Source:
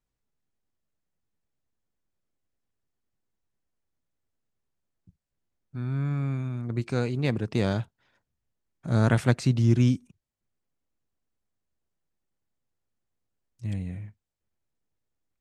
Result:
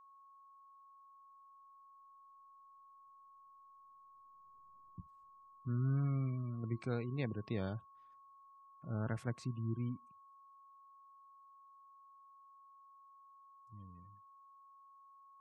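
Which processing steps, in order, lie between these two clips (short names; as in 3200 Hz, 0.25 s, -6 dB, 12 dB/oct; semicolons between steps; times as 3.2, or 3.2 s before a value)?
Doppler pass-by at 4.77, 7 m/s, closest 1.5 m; spectral gate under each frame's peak -30 dB strong; whine 1100 Hz -68 dBFS; gain +9 dB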